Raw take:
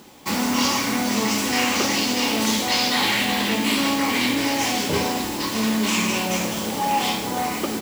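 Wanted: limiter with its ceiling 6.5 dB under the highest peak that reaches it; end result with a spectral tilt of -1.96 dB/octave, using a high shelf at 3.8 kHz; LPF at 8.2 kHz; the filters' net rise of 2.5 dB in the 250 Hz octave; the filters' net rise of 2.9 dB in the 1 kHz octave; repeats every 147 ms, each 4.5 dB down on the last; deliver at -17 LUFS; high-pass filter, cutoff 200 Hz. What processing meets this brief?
high-pass 200 Hz; low-pass 8.2 kHz; peaking EQ 250 Hz +4.5 dB; peaking EQ 1 kHz +3 dB; treble shelf 3.8 kHz +7 dB; peak limiter -12 dBFS; feedback delay 147 ms, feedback 60%, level -4.5 dB; trim +2 dB

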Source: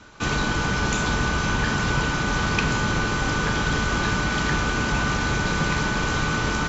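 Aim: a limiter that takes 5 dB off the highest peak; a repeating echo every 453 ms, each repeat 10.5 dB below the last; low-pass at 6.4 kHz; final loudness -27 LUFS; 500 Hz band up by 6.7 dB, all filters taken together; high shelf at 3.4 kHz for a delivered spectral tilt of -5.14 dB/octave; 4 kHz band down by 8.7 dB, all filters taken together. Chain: low-pass 6.4 kHz; peaking EQ 500 Hz +8.5 dB; treble shelf 3.4 kHz -6 dB; peaking EQ 4 kHz -7 dB; peak limiter -15 dBFS; feedback delay 453 ms, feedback 30%, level -10.5 dB; trim -3 dB

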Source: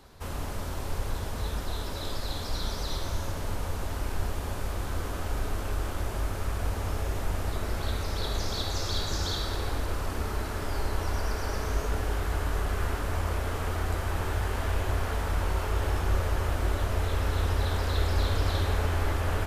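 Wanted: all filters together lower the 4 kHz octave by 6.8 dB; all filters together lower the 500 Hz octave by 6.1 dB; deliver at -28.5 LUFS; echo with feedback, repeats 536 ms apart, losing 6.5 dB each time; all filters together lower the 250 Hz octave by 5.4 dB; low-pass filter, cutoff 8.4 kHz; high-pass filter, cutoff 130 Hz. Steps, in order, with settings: high-pass 130 Hz; low-pass 8.4 kHz; peaking EQ 250 Hz -4.5 dB; peaking EQ 500 Hz -6.5 dB; peaking EQ 4 kHz -8 dB; feedback delay 536 ms, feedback 47%, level -6.5 dB; trim +9 dB

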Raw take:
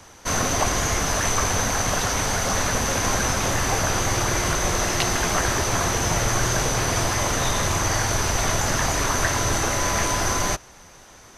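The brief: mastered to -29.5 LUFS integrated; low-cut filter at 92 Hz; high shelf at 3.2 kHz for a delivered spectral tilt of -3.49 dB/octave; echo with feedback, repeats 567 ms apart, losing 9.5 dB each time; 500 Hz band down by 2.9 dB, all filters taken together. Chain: high-pass 92 Hz; peaking EQ 500 Hz -3.5 dB; treble shelf 3.2 kHz -8.5 dB; feedback delay 567 ms, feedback 33%, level -9.5 dB; trim -4.5 dB

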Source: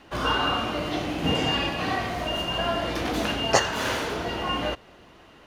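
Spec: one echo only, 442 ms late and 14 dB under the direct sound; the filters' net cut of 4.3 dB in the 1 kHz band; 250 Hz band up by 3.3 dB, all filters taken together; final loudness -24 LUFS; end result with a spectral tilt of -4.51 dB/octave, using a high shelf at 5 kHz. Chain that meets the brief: peaking EQ 250 Hz +4.5 dB; peaking EQ 1 kHz -6 dB; treble shelf 5 kHz -4 dB; delay 442 ms -14 dB; trim +2.5 dB

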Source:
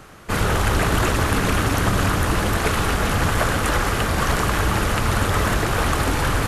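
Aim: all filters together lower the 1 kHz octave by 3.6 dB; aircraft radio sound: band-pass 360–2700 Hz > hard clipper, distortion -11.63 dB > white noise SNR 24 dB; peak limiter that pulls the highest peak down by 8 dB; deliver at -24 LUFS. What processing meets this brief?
peaking EQ 1 kHz -4.5 dB; peak limiter -14.5 dBFS; band-pass 360–2700 Hz; hard clipper -27 dBFS; white noise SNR 24 dB; trim +6.5 dB

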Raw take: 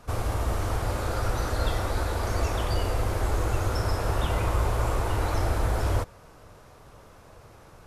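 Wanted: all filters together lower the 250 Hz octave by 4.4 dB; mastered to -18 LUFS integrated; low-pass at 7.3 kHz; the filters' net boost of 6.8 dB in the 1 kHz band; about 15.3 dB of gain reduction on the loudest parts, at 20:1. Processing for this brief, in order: low-pass 7.3 kHz; peaking EQ 250 Hz -7.5 dB; peaking EQ 1 kHz +9 dB; compression 20:1, threshold -35 dBFS; trim +23.5 dB

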